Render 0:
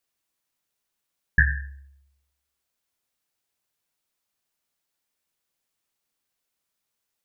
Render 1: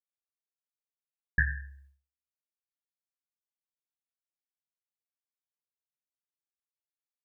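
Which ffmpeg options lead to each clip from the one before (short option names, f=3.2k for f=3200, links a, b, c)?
-af "agate=range=-33dB:threshold=-48dB:ratio=3:detection=peak,volume=-7.5dB"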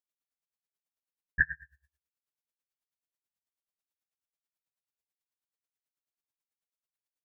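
-filter_complex "[0:a]asplit=2[a][b];[b]adelay=22,volume=-3dB[c];[a][c]amix=inputs=2:normalize=0,aeval=exprs='val(0)*pow(10,-26*(0.5-0.5*cos(2*PI*9.2*n/s))/20)':c=same,volume=2dB"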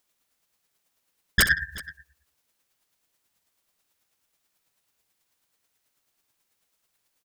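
-af "aeval=exprs='0.316*sin(PI/2*8.91*val(0)/0.316)':c=same,aecho=1:1:64|374:0.251|0.112,volume=-3.5dB"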